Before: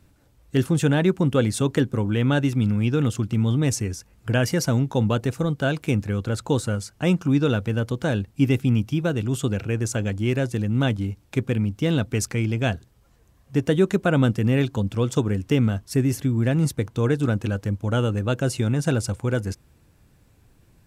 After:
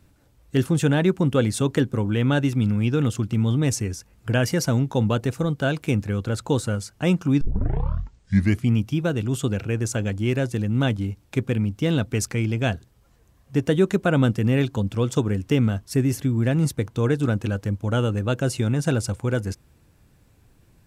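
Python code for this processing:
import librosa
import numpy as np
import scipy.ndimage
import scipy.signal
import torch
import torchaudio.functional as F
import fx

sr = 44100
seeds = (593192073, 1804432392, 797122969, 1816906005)

y = fx.edit(x, sr, fx.tape_start(start_s=7.41, length_s=1.35), tone=tone)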